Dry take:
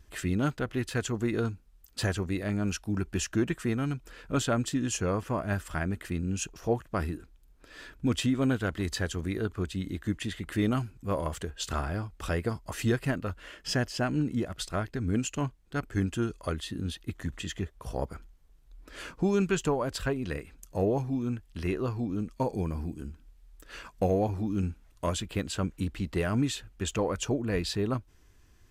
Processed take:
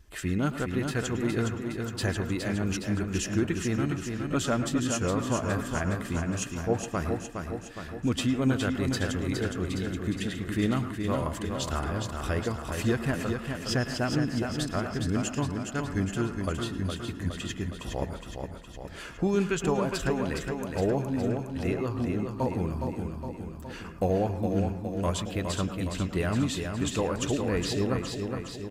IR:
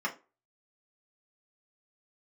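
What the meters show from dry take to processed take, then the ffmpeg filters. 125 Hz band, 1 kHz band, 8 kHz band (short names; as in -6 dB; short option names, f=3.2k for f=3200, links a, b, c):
+1.5 dB, +2.0 dB, +1.5 dB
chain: -filter_complex "[0:a]aecho=1:1:414|828|1242|1656|2070|2484|2898|3312:0.531|0.308|0.179|0.104|0.0601|0.0348|0.0202|0.0117,asplit=2[a][b];[1:a]atrim=start_sample=2205,adelay=106[c];[b][c]afir=irnorm=-1:irlink=0,volume=-16dB[d];[a][d]amix=inputs=2:normalize=0"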